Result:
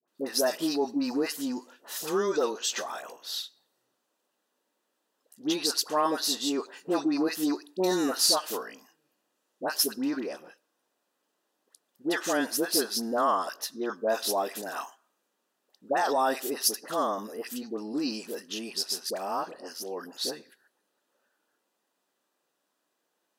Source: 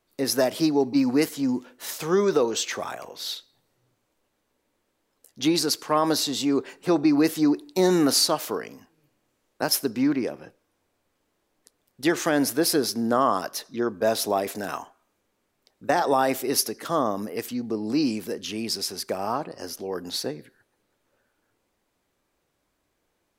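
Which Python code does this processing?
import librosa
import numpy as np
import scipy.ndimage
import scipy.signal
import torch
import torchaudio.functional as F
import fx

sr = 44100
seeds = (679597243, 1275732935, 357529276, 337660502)

y = scipy.signal.sosfilt(scipy.signal.butter(4, 210.0, 'highpass', fs=sr, output='sos'), x)
y = fx.peak_eq(y, sr, hz=280.0, db=-5.0, octaves=1.9)
y = fx.notch(y, sr, hz=2200.0, q=5.3)
y = fx.dispersion(y, sr, late='highs', ms=79.0, hz=1000.0)
y = y * 10.0 ** (-2.0 / 20.0)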